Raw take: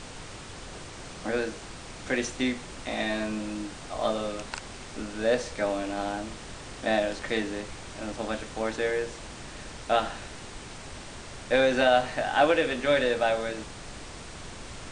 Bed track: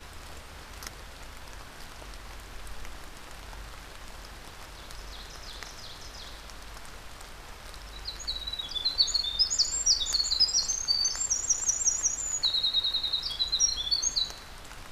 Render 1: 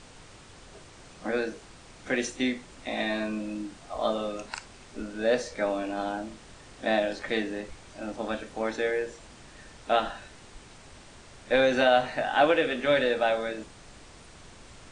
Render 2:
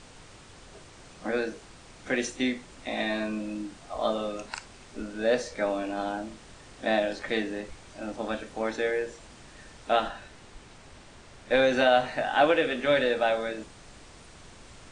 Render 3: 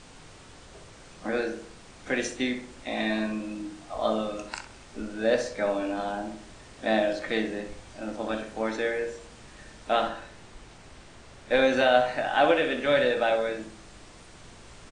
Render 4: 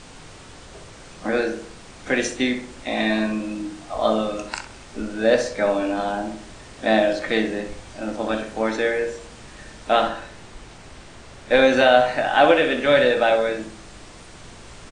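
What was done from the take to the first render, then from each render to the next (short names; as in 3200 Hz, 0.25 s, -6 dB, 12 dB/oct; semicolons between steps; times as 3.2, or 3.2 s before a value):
noise print and reduce 8 dB
10.08–11.51 high shelf 5400 Hz -4.5 dB
doubler 18 ms -13.5 dB; darkening echo 64 ms, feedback 46%, low-pass 2000 Hz, level -7 dB
gain +6.5 dB; limiter -2 dBFS, peak gain reduction 1.5 dB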